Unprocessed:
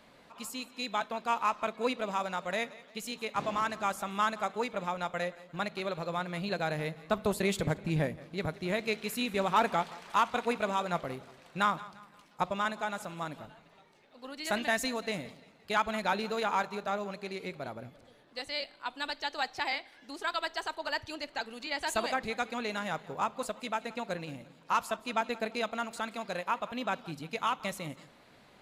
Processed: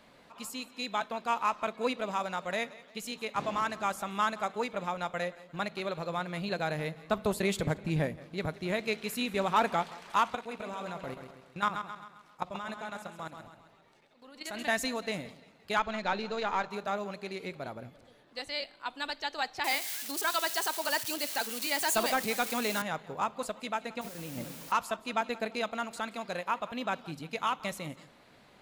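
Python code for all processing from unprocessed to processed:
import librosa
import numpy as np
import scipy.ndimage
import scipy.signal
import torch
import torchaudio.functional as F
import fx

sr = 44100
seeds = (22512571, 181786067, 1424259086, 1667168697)

y = fx.chain(x, sr, fx.level_steps(step_db=13),
    fx.echo_feedback(ms=133, feedback_pct=47, wet_db=-8.0), at=(10.35, 14.64))
y = fx.chain(y, sr, fx.halfwave_gain(db=-3.0),
    fx.lowpass(hz=6600.0, slope=24), at=(15.79, 16.7))
y = fx.chain(y, sr, fx.crossing_spikes(level_db=-30.0),
    fx.cheby1_highpass(hz=170.0, order=2),
    fx.leveller(passes=1), at=(19.64, 22.82))
y = fx.chain(y, sr, fx.peak_eq(hz=250.0, db=5.5, octaves=2.8),
    fx.over_compress(threshold_db=-42.0, ratio=-1.0),
    fx.quant_dither(seeds[0], bits=8, dither='triangular'), at=(24.01, 24.72))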